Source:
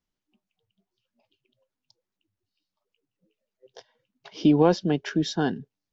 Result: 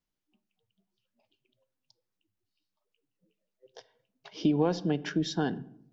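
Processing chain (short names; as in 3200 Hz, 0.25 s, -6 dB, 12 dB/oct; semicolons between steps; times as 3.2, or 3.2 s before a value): on a send at -14.5 dB: high shelf 5600 Hz -11 dB + reverb RT60 0.70 s, pre-delay 6 ms; on the sum: compressor 2:1, threshold -22 dBFS, peak gain reduction 5.5 dB; gain -3 dB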